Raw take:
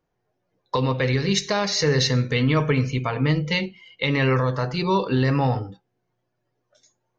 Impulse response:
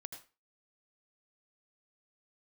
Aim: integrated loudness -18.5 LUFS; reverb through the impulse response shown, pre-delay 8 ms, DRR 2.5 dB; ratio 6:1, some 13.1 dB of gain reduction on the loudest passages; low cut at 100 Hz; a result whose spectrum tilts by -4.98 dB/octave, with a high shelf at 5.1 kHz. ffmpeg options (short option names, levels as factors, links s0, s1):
-filter_complex "[0:a]highpass=100,highshelf=f=5100:g=-4.5,acompressor=threshold=0.0282:ratio=6,asplit=2[s0][s1];[1:a]atrim=start_sample=2205,adelay=8[s2];[s1][s2]afir=irnorm=-1:irlink=0,volume=1.19[s3];[s0][s3]amix=inputs=2:normalize=0,volume=4.73"